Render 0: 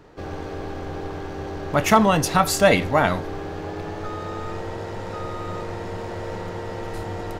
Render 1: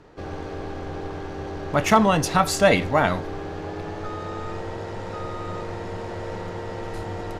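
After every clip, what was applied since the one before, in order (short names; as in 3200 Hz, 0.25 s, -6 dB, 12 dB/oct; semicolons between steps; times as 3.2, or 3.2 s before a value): Bessel low-pass 10000 Hz, order 2; gain -1 dB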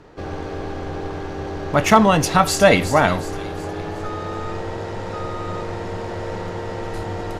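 thin delay 0.364 s, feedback 43%, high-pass 3900 Hz, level -9 dB; gain +4 dB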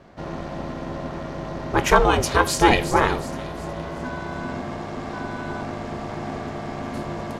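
ring modulator 250 Hz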